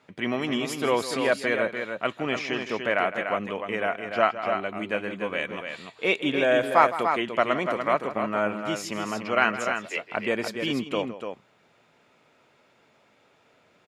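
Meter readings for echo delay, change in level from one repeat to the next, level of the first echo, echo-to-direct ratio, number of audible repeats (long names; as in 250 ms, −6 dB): 161 ms, repeats not evenly spaced, −13.5 dB, −5.5 dB, 2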